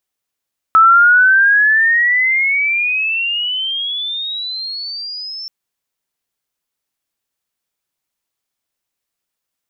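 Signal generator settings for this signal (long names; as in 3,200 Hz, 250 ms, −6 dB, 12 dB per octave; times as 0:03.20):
glide logarithmic 1,300 Hz → 5,400 Hz −4.5 dBFS → −25 dBFS 4.73 s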